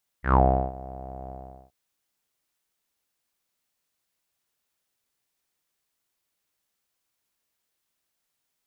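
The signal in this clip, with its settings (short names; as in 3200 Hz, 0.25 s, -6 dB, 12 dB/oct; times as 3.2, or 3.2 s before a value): synth note saw C2 12 dB/oct, low-pass 710 Hz, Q 9.9, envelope 1.5 oct, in 0.18 s, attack 0.115 s, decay 0.37 s, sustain -22 dB, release 0.42 s, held 1.06 s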